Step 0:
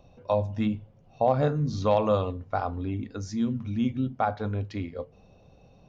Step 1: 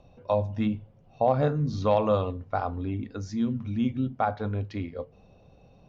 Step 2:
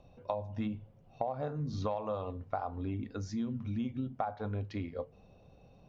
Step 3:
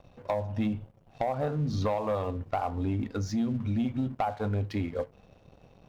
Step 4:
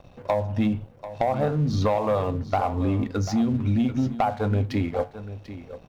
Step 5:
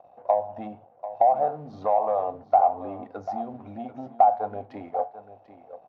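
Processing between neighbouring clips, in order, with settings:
Bessel low-pass filter 5,300 Hz
dynamic equaliser 800 Hz, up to +7 dB, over −39 dBFS, Q 1.2; downward compressor 10 to 1, threshold −28 dBFS, peak gain reduction 16 dB; level −3.5 dB
leveller curve on the samples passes 2
single-tap delay 741 ms −13.5 dB; level +6 dB
resonant band-pass 730 Hz, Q 6.3; level +9 dB

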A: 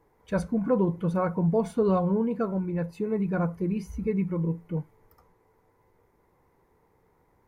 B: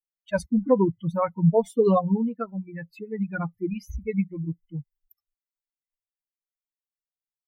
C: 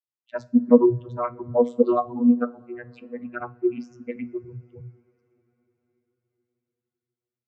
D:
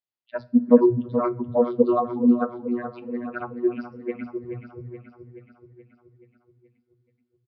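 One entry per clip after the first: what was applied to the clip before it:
spectral dynamics exaggerated over time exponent 3; level +8.5 dB
automatic gain control gain up to 6.5 dB; channel vocoder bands 32, saw 121 Hz; on a send at −13.5 dB: convolution reverb, pre-delay 3 ms; on the sum: level −2.5 dB
on a send: repeating echo 427 ms, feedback 57%, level −10 dB; on the sum: downsampling to 11,025 Hz

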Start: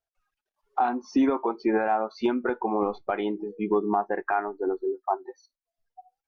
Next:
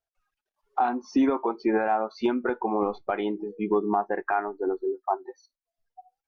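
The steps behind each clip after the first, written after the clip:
no processing that can be heard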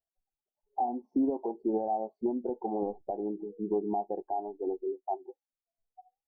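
elliptic low-pass filter 810 Hz, stop band 40 dB
level −5.5 dB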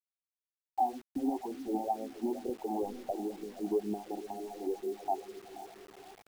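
feedback delay with all-pass diffusion 510 ms, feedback 52%, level −12 dB
all-pass phaser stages 6, 2.1 Hz, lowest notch 120–1,000 Hz
bit reduction 9 bits

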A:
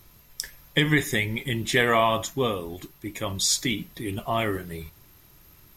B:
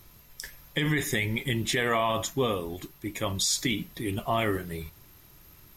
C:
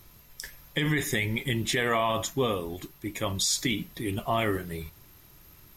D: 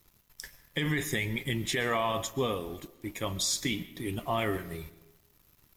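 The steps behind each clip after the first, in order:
brickwall limiter −16.5 dBFS, peak gain reduction 9 dB
no processing that can be heard
dead-zone distortion −53.5 dBFS; on a send at −16.5 dB: convolution reverb RT60 0.95 s, pre-delay 90 ms; on the sum: level −3 dB

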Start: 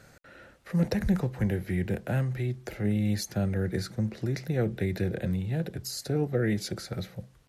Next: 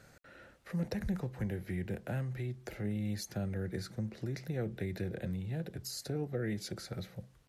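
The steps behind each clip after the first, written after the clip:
downward compressor 1.5 to 1, threshold −35 dBFS, peak gain reduction 6 dB
level −4.5 dB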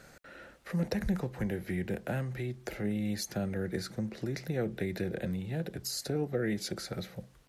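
parametric band 100 Hz −7.5 dB 0.96 octaves
level +5.5 dB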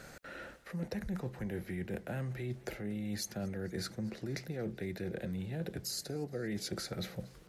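reversed playback
downward compressor, threshold −39 dBFS, peak gain reduction 13 dB
reversed playback
feedback echo with a swinging delay time 232 ms, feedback 72%, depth 104 cents, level −24 dB
level +3.5 dB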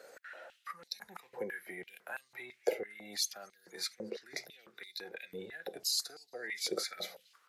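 noise reduction from a noise print of the clip's start 11 dB
high-pass on a step sequencer 6 Hz 490–4,100 Hz
level +3.5 dB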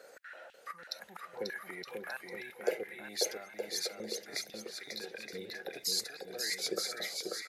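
bouncing-ball delay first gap 540 ms, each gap 0.7×, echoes 5

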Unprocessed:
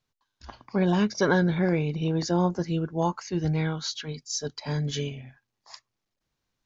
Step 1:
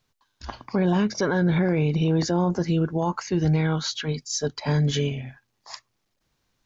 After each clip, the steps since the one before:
dynamic equaliser 5,200 Hz, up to −6 dB, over −46 dBFS, Q 0.9
brickwall limiter −23 dBFS, peak gain reduction 11.5 dB
level +8 dB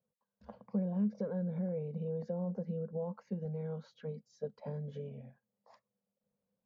downward compressor, threshold −26 dBFS, peak gain reduction 8 dB
pair of resonant band-passes 320 Hz, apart 1.3 octaves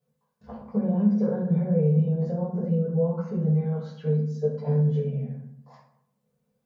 convolution reverb RT60 0.75 s, pre-delay 3 ms, DRR −8.5 dB
level +1 dB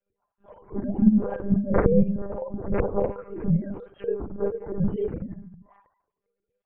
three sine waves on the formant tracks
backwards echo 36 ms −9.5 dB
one-pitch LPC vocoder at 8 kHz 200 Hz

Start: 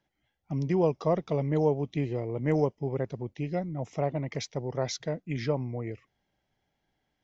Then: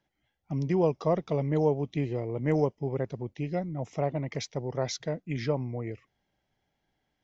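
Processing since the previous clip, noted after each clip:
no processing that can be heard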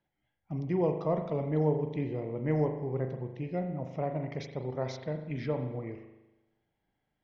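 high-frequency loss of the air 190 metres
spring reverb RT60 1 s, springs 39 ms, chirp 65 ms, DRR 5.5 dB
level −3.5 dB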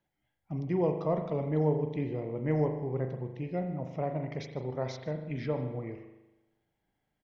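single-tap delay 150 ms −21 dB

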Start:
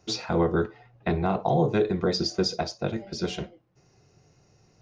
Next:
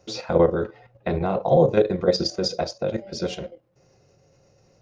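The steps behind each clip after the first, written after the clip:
parametric band 540 Hz +14.5 dB 0.24 octaves
output level in coarse steps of 9 dB
level +4 dB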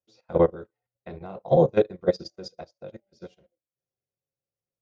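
expander for the loud parts 2.5 to 1, over −38 dBFS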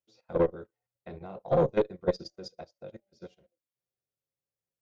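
one-sided soft clipper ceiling −14 dBFS
level −3.5 dB

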